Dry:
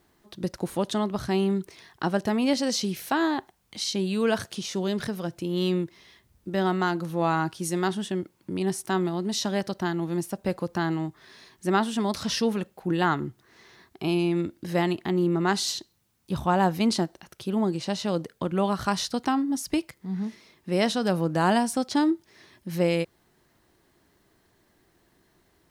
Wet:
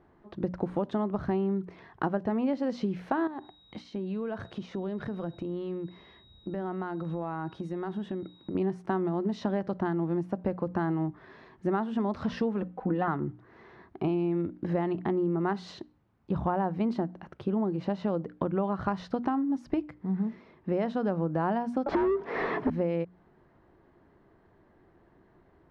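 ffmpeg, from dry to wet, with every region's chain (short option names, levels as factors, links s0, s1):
-filter_complex "[0:a]asettb=1/sr,asplit=3[s0][s1][s2];[s0]atrim=end=3.274[s3];[s1]atrim=start=3.27:end=8.55,asetpts=PTS-STARTPTS,afade=t=in:d=0.004:c=qsin,afade=t=out:st=5.276:d=0.004:c=qsin,aeval=exprs='val(0)+0.00631*sin(2*PI*3800*n/s)':c=same,acompressor=threshold=0.02:ratio=12:attack=3.2:release=140:knee=1:detection=peak[s4];[s2]atrim=start=8.546[s5];[s3][s4]acrossfade=d=0.004:c1=hsin:c2=qsin[s6];[s6][s5]acrossfade=d=0.004:c1=qsin:c2=hsin,asettb=1/sr,asplit=3[s7][s8][s9];[s7]atrim=end=12.624[s10];[s8]atrim=start=12.62:end=13.08,asetpts=PTS-STARTPTS,afade=t=in:d=0.004:c=qsin,afade=t=out:st=0.456:d=0.004:c=qsin,lowpass=f=3100:p=1,aecho=1:1:4:0.74,atrim=end_sample=20286[s11];[s9]atrim=start=13.076[s12];[s10][s11]acrossfade=d=0.004:c1=hsin:c2=qsin[s13];[s13][s12]acrossfade=d=0.004:c1=qsin:c2=hsin,asettb=1/sr,asplit=3[s14][s15][s16];[s14]atrim=end=21.864[s17];[s15]atrim=start=21.86:end=22.7,asetpts=PTS-STARTPTS,afade=t=in:d=0.004:c=qsin,afade=t=out:st=0.836:d=0.004:c=qsin,lowpass=11000,afreqshift=62,asplit=2[s18][s19];[s19]highpass=f=720:p=1,volume=89.1,asoftclip=type=tanh:threshold=0.266[s20];[s18][s20]amix=inputs=2:normalize=0,lowpass=f=1200:p=1,volume=0.501[s21];[s16]atrim=start=22.696[s22];[s17][s21]acrossfade=d=0.004:c1=hsin:c2=qsin[s23];[s23][s22]acrossfade=d=0.004:c1=qsin:c2=hsin,lowpass=1300,bandreject=f=60:t=h:w=6,bandreject=f=120:t=h:w=6,bandreject=f=180:t=h:w=6,bandreject=f=240:t=h:w=6,bandreject=f=300:t=h:w=6,acompressor=threshold=0.0282:ratio=5,volume=1.78"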